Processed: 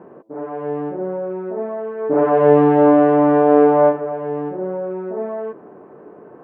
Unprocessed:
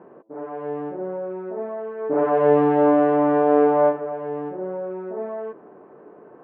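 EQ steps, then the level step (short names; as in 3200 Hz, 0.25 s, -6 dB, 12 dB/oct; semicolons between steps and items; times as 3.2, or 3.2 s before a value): low shelf 210 Hz +6 dB; +3.5 dB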